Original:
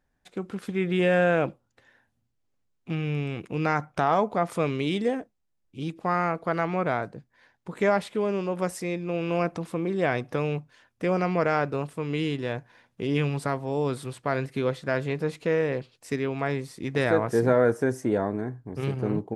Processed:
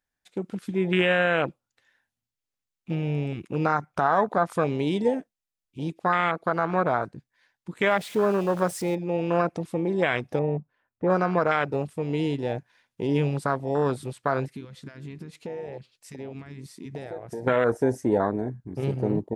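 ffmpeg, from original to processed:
-filter_complex "[0:a]asettb=1/sr,asplit=3[s0][s1][s2];[s0]atrim=end=7.864[s3];[s1]atrim=start=7.86:end=8.95,asetpts=PTS-STARTPTS,afade=t=in:d=0.004:c=qsin,afade=t=out:st=1.086:d=0.004:c=qsin,aeval=exprs='val(0)+0.5*0.0188*sgn(val(0))':c=same[s4];[s2]atrim=start=8.946[s5];[s3][s4]acrossfade=d=0.004:c1=hsin:c2=qsin[s6];[s6][s5]acrossfade=d=0.004:c1=qsin:c2=hsin,asettb=1/sr,asplit=3[s7][s8][s9];[s7]atrim=end=10.394[s10];[s8]atrim=start=10.39:end=11.1,asetpts=PTS-STARTPTS,afade=t=in:d=0.004:c=qsin,afade=t=out:st=0.706:d=0.004:c=qsin,lowpass=1100[s11];[s9]atrim=start=11.096[s12];[s10][s11]acrossfade=d=0.004:c1=hsin:c2=qsin[s13];[s13][s12]acrossfade=d=0.004:c1=qsin:c2=hsin,asplit=3[s14][s15][s16];[s14]afade=t=out:st=14.5:d=0.02[s17];[s15]acompressor=threshold=0.02:ratio=5:attack=3.2:release=140:knee=1:detection=peak,afade=t=in:st=14.5:d=0.02,afade=t=out:st=17.46:d=0.02[s18];[s16]afade=t=in:st=17.46:d=0.02[s19];[s17][s18][s19]amix=inputs=3:normalize=0,afwtdn=0.0398,tiltshelf=f=1200:g=-7,alimiter=limit=0.119:level=0:latency=1:release=125,volume=2.51"

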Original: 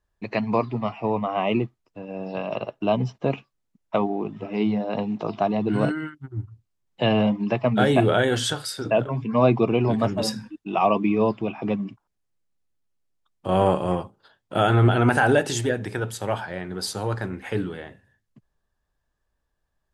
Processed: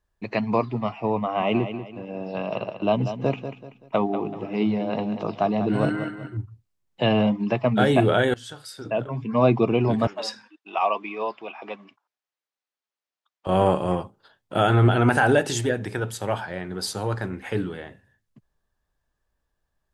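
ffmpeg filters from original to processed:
-filter_complex "[0:a]asettb=1/sr,asplit=3[s0][s1][s2];[s0]atrim=end=1.214[s3];[s1]atrim=start=1.21:end=6.37,asetpts=PTS-STARTPTS,afade=t=in:d=0.004:c=qsin,afade=t=out:st=5.156:d=0.004:c=qsin,aecho=1:1:191|382|573|764:0.316|0.111|0.0387|0.0136,atrim=end_sample=227556[s4];[s2]atrim=start=6.366[s5];[s3][s4]acrossfade=d=0.004:c1=hsin:c2=qsin[s6];[s6][s5]acrossfade=d=0.004:c1=qsin:c2=hsin,asettb=1/sr,asplit=3[s7][s8][s9];[s7]atrim=end=10.074[s10];[s8]atrim=start=10.07:end=13.47,asetpts=PTS-STARTPTS,afade=t=in:d=0.004:c=qsin,afade=t=out:st=3.396:d=0.004:c=qsin,highpass=700,lowpass=5400[s11];[s9]atrim=start=13.466[s12];[s10][s11]acrossfade=d=0.004:c1=hsin:c2=qsin[s13];[s13][s12]acrossfade=d=0.004:c1=qsin:c2=hsin,asplit=2[s14][s15];[s14]atrim=end=8.34,asetpts=PTS-STARTPTS,afade=t=out:st=8.336:d=0.004:c=hsin:silence=0.0891251[s16];[s15]atrim=start=8.34,asetpts=PTS-STARTPTS,afade=t=in:d=1.16:silence=0.0891251[s17];[s16][s17]concat=n=2:v=0:a=1"

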